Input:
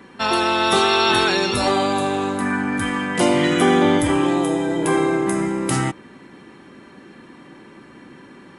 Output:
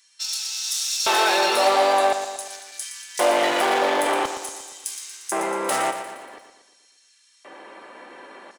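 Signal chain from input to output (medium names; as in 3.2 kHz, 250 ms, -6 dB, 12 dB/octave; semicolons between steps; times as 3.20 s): hard clipper -20.5 dBFS, distortion -7 dB; LFO high-pass square 0.47 Hz 610–5900 Hz; feedback delay 117 ms, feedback 54%, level -9.5 dB; trim +2 dB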